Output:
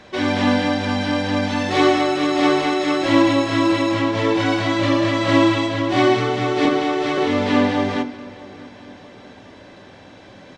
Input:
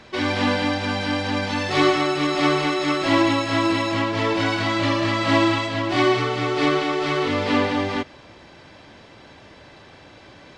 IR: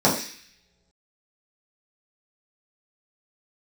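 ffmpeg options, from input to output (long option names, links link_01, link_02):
-filter_complex "[0:a]asettb=1/sr,asplit=3[link_01][link_02][link_03];[link_01]atrim=end=6.654[link_04];[link_02]atrim=start=6.65:end=7.18,asetpts=PTS-STARTPTS,afade=type=in:duration=0.004:curve=qsin,afade=type=out:start_time=0.526:duration=0.004:curve=qsin,acrossover=split=390[link_05][link_06];[link_06]acompressor=threshold=-21dB:ratio=6[link_07];[link_05][link_07]amix=inputs=2:normalize=0[link_08];[link_03]atrim=start=7.176[link_09];[link_04][link_08]acrossfade=duration=0.004:curve1=hsin:curve2=qsin[link_10];[link_10][link_09]acrossfade=duration=0.004:curve1=qsin:curve2=hsin,asplit=2[link_11][link_12];[link_12]adelay=638,lowpass=frequency=3800:poles=1,volume=-20dB,asplit=2[link_13][link_14];[link_14]adelay=638,lowpass=frequency=3800:poles=1,volume=0.49,asplit=2[link_15][link_16];[link_16]adelay=638,lowpass=frequency=3800:poles=1,volume=0.49,asplit=2[link_17][link_18];[link_18]adelay=638,lowpass=frequency=3800:poles=1,volume=0.49[link_19];[link_11][link_13][link_15][link_17][link_19]amix=inputs=5:normalize=0,asplit=2[link_20][link_21];[1:a]atrim=start_sample=2205,lowpass=8300[link_22];[link_21][link_22]afir=irnorm=-1:irlink=0,volume=-25dB[link_23];[link_20][link_23]amix=inputs=2:normalize=0"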